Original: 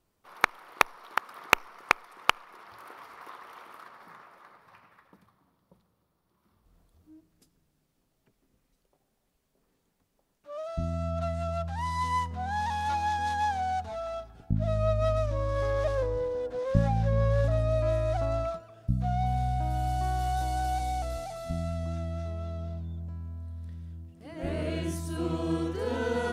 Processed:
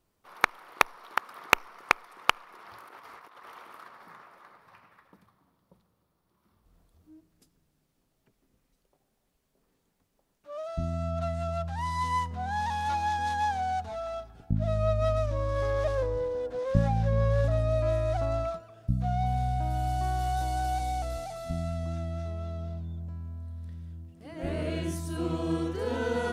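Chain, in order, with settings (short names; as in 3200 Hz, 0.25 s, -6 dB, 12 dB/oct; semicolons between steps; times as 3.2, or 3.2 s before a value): 2.64–3.5 negative-ratio compressor -49 dBFS, ratio -0.5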